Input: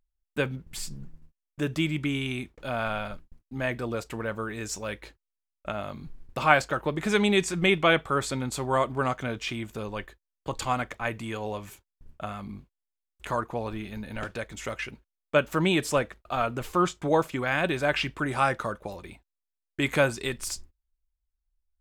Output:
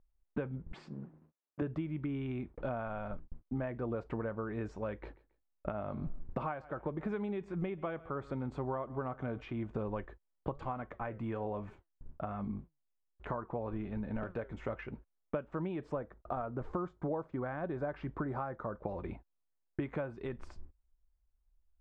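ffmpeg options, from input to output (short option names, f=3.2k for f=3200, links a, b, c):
-filter_complex "[0:a]asettb=1/sr,asplit=3[a][b][c];[a]atrim=end=0.724[d];[b]atrim=start=0.72:end=1.62,asetpts=PTS-STARTPTS,afade=t=in:d=0.004:c=qsin,afade=t=out:st=0.896:d=0.004:c=qsin,highpass=240,lowpass=6.5k[e];[c]atrim=start=1.616[f];[d][e]acrossfade=d=0.004:c1=hsin:c2=qsin[g];[g][f]acrossfade=d=0.004:c1=qsin:c2=hsin,asettb=1/sr,asplit=3[h][i][j];[h]atrim=end=4.994[k];[i]atrim=start=4.99:end=9.41,asetpts=PTS-STARTPTS,afade=t=in:d=0.004:c=qsin,afade=t=out:st=4.416:d=0.004:c=qsin,aecho=1:1:137|274:0.0708|0.0191,atrim=end_sample=194922[l];[j]atrim=start=9.406[m];[k][l]acrossfade=d=0.004:c1=hsin:c2=qsin[n];[n][m]acrossfade=d=0.004:c1=qsin:c2=hsin,asplit=3[o][p][q];[o]afade=t=out:st=10.51:d=0.02[r];[p]flanger=delay=4.5:depth=3.5:regen=83:speed=1.2:shape=sinusoidal,afade=t=in:st=10.51:d=0.02,afade=t=out:st=14.68:d=0.02[s];[q]afade=t=in:st=14.68:d=0.02[t];[r][s][t]amix=inputs=3:normalize=0,asettb=1/sr,asplit=3[u][v][w];[u]atrim=end=15.934[x];[v]atrim=start=15.93:end=18.81,asetpts=PTS-STARTPTS,afade=t=in:d=0.004:c=qsin,afade=t=out:st=2.876:d=0.004:c=qsin,equalizer=f=2.7k:w=1.8:g=-9[y];[w]atrim=start=18.806[z];[x][y]acrossfade=d=0.004:c1=hsin:c2=qsin[aa];[aa][z]acrossfade=d=0.004:c1=qsin:c2=hsin,acompressor=threshold=-38dB:ratio=16,lowpass=1.1k,volume=5.5dB"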